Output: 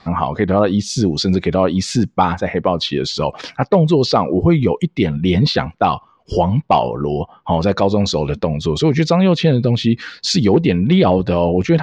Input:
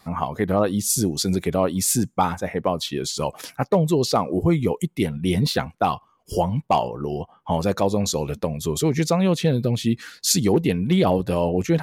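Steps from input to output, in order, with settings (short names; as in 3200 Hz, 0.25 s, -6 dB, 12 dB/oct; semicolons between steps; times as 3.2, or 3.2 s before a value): LPF 4800 Hz 24 dB/oct; in parallel at -1.5 dB: limiter -19 dBFS, peak gain reduction 11 dB; on the sum: gain +3.5 dB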